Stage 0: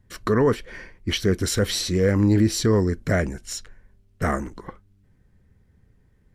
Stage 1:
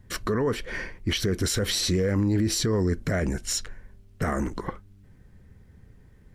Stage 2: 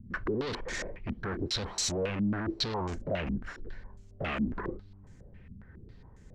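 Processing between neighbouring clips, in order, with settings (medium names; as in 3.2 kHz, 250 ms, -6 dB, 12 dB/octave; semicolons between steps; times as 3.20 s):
in parallel at +1 dB: compression, threshold -28 dBFS, peak gain reduction 13 dB; on the sum: peak limiter -17 dBFS, peak gain reduction 9.5 dB
hard clipper -34 dBFS, distortion -4 dB; step-sequenced low-pass 7.3 Hz 220–7000 Hz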